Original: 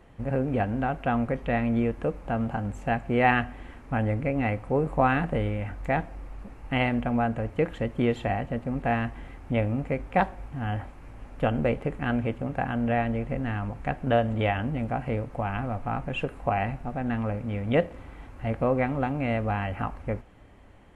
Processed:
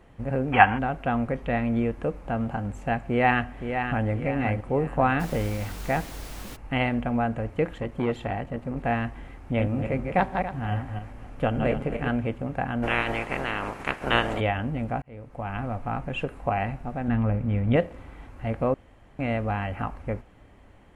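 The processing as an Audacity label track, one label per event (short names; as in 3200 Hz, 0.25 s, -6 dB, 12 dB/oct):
0.530000	0.780000	spectral gain 720–3400 Hz +18 dB
3.040000	4.080000	echo throw 0.52 s, feedback 40%, level -7 dB
5.190000	6.550000	added noise pink -41 dBFS
7.730000	8.770000	core saturation saturates under 420 Hz
9.450000	12.110000	regenerating reverse delay 0.14 s, feedback 44%, level -5 dB
12.820000	14.390000	spectral limiter ceiling under each frame's peak by 26 dB
15.020000	15.640000	fade in
17.080000	17.760000	tone controls bass +7 dB, treble -7 dB
18.740000	19.190000	room tone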